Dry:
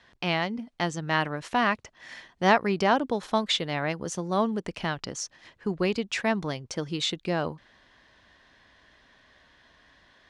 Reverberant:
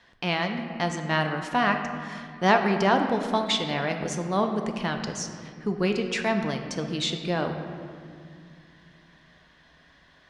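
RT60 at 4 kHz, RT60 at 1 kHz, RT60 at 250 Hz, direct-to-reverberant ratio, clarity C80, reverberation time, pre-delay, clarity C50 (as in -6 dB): 1.3 s, 2.0 s, 3.4 s, 4.5 dB, 7.5 dB, 2.2 s, 4 ms, 6.5 dB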